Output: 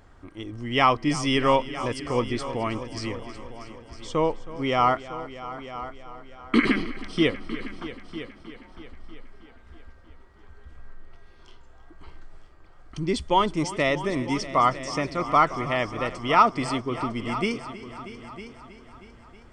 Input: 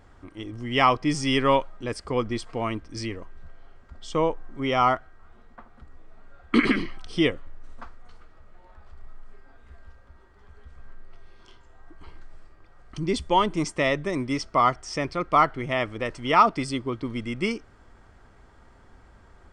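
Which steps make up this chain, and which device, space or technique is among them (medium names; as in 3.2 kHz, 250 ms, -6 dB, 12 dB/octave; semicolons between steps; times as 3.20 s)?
multi-head tape echo (multi-head delay 318 ms, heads all three, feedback 41%, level -17 dB; wow and flutter 22 cents)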